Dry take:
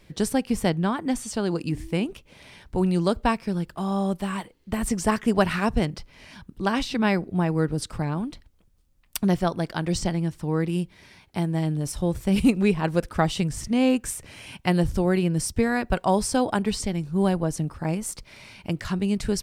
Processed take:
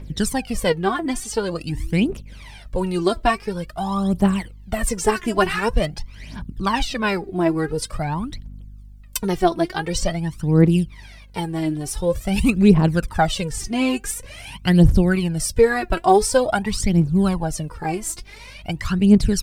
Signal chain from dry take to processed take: hum 50 Hz, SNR 25 dB; phaser 0.47 Hz, delay 3.1 ms, feedback 75%; gain +1.5 dB

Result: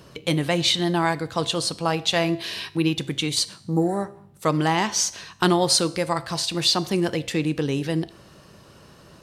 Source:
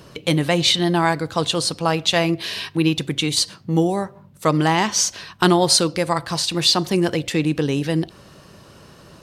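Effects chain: spectral repair 3.68–3.98, 1300–6600 Hz both; resonator 67 Hz, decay 0.69 s, harmonics all, mix 40%

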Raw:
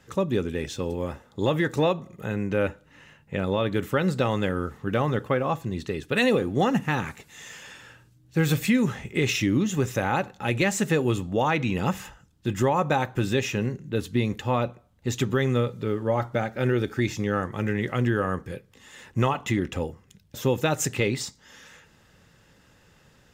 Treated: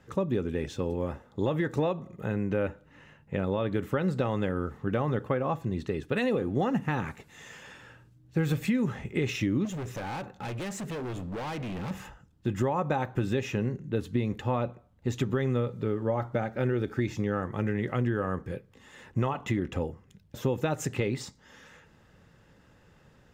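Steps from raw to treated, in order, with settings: compressor 3:1, threshold -24 dBFS, peak gain reduction 5.5 dB; high shelf 2400 Hz -10 dB; 9.65–11.91 hard clip -33 dBFS, distortion -12 dB

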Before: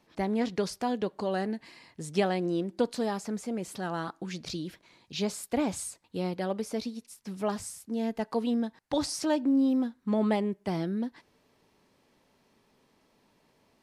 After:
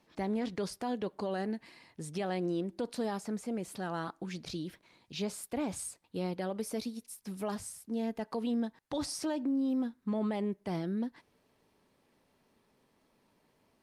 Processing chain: 6.6–7.55 high shelf 7500 Hz +9 dB; limiter -23.5 dBFS, peak gain reduction 10.5 dB; gain -2.5 dB; Opus 48 kbps 48000 Hz

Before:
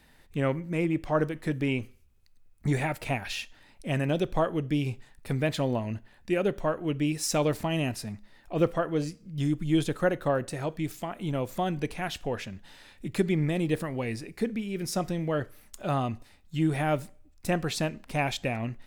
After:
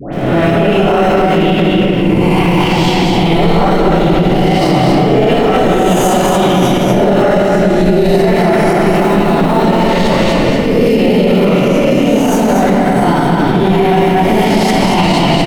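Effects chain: spectral swells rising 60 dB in 1.37 s; crackle 200/s -37 dBFS; in parallel at -12 dB: sample-and-hold 23×; on the sum: high shelf 6000 Hz -8.5 dB; echo 0.286 s -4.5 dB; varispeed +22%; bell 1600 Hz -6.5 dB 0.21 oct; dispersion highs, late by 0.13 s, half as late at 1300 Hz; reverb RT60 3.5 s, pre-delay 3 ms, DRR -5 dB; maximiser +12.5 dB; gain -1 dB

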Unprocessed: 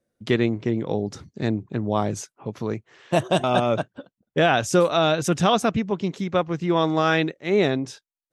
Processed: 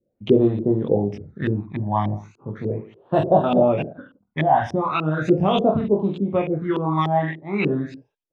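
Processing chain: reverse bouncing-ball echo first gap 20 ms, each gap 1.25×, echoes 5; phaser stages 12, 0.38 Hz, lowest notch 430–2200 Hz; LFO low-pass saw up 3.4 Hz 350–2800 Hz

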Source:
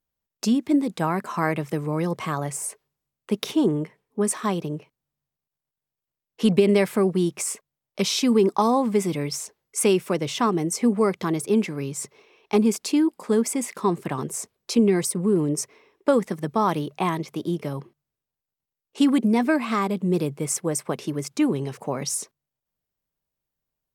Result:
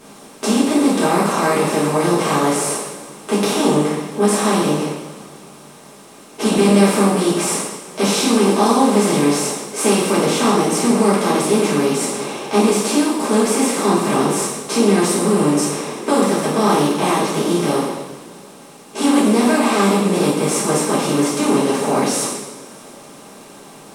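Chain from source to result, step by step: per-bin compression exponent 0.4; two-slope reverb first 0.88 s, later 3.1 s, from -19 dB, DRR -9.5 dB; gain -9 dB

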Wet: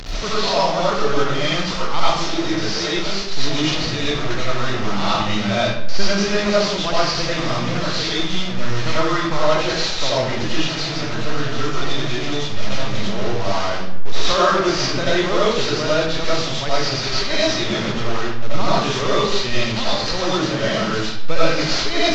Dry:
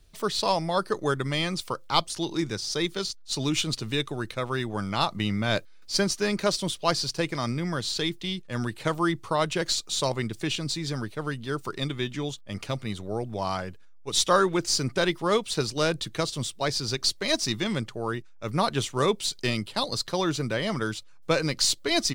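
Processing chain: delta modulation 32 kbps, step -24.5 dBFS; digital reverb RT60 0.74 s, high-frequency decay 0.8×, pre-delay 50 ms, DRR -8.5 dB; gain -2 dB

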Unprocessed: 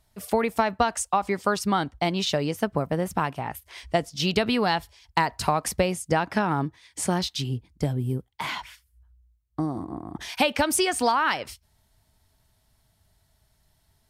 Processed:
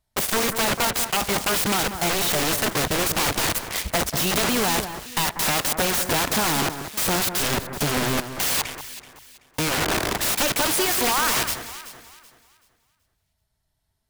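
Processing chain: sample leveller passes 5; wrapped overs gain 16.5 dB; echo with dull and thin repeats by turns 0.19 s, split 1900 Hz, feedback 54%, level -9 dB

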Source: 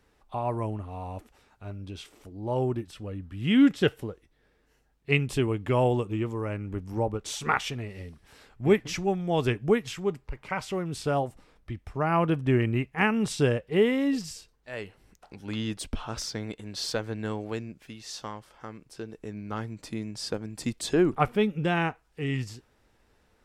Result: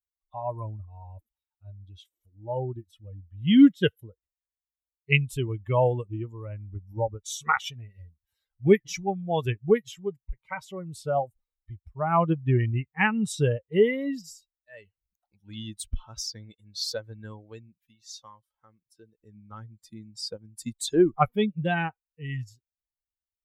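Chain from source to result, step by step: per-bin expansion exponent 2; gain +5.5 dB

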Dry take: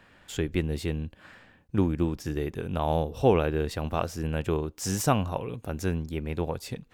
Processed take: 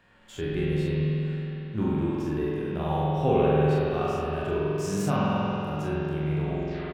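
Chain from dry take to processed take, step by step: tape stop at the end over 0.54 s; bell 13000 Hz -4 dB 0.56 oct; early reflections 27 ms -5.5 dB, 41 ms -6.5 dB; spring tank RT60 3.2 s, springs 46 ms, chirp 30 ms, DRR -4.5 dB; harmonic-percussive split percussive -10 dB; gain -3.5 dB

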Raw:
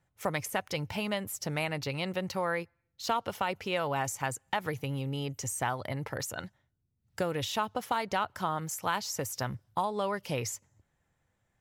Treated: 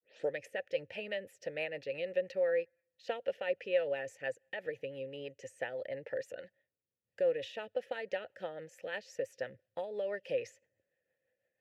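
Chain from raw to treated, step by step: tape start at the beginning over 0.34 s; rotary speaker horn 6 Hz; vowel filter e; gain +8 dB

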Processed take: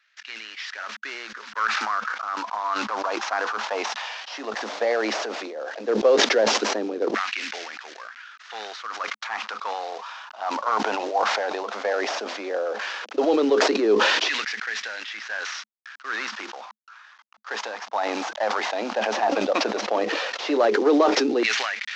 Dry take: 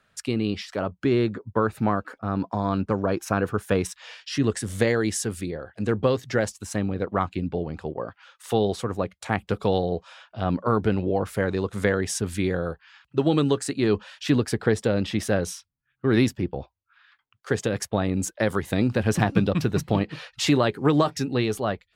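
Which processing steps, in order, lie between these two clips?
CVSD 32 kbps; LFO high-pass saw down 0.14 Hz 380–2000 Hz; 5.01–5.85 transient shaper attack -9 dB, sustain +6 dB; rippled Chebyshev high-pass 210 Hz, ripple 3 dB; sustainer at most 23 dB/s

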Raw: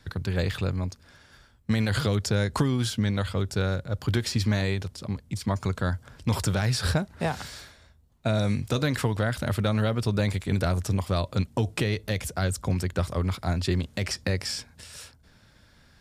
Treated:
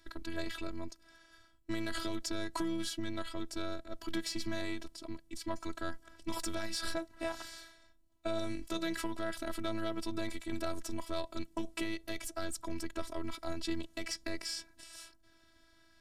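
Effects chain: added harmonics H 5 -23 dB, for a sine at -13 dBFS; robotiser 329 Hz; gain -7.5 dB

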